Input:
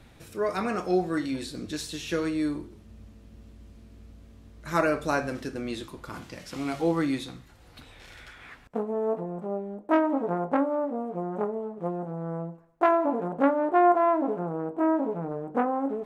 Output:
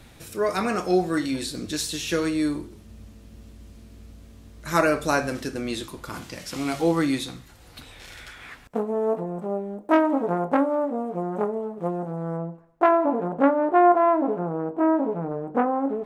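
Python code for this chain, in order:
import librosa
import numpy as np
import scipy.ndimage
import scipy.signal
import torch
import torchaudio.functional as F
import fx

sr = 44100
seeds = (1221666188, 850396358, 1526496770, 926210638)

y = fx.high_shelf(x, sr, hz=4300.0, db=fx.steps((0.0, 7.5), (12.36, -6.0)))
y = y * librosa.db_to_amplitude(3.5)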